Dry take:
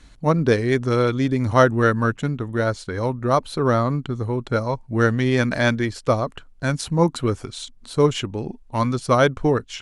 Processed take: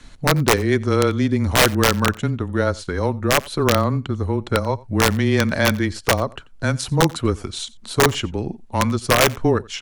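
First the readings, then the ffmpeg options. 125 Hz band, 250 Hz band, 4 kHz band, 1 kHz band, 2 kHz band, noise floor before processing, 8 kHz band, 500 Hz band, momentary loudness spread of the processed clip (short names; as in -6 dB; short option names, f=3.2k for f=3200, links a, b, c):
+1.0 dB, +1.0 dB, +8.5 dB, +1.0 dB, +3.5 dB, -48 dBFS, +11.0 dB, 0.0 dB, 9 LU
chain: -filter_complex "[0:a]asplit=2[a][b];[b]acompressor=threshold=-31dB:ratio=6,volume=-1dB[c];[a][c]amix=inputs=2:normalize=0,afreqshift=-17,aeval=exprs='(mod(2*val(0)+1,2)-1)/2':c=same,aecho=1:1:89:0.0708"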